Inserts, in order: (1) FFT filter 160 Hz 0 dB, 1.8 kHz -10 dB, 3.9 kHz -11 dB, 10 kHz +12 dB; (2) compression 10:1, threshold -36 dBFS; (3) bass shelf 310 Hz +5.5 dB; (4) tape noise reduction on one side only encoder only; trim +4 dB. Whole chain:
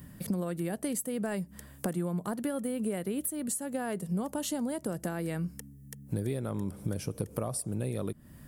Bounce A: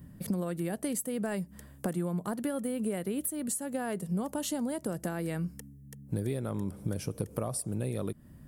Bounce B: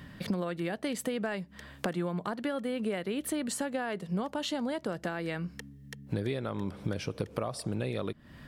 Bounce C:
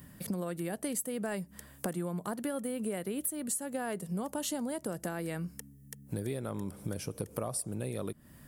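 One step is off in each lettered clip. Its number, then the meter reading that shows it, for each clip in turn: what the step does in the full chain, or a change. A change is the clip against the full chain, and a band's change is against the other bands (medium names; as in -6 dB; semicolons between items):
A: 4, crest factor change -4.5 dB; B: 1, 8 kHz band -8.0 dB; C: 3, 125 Hz band -4.0 dB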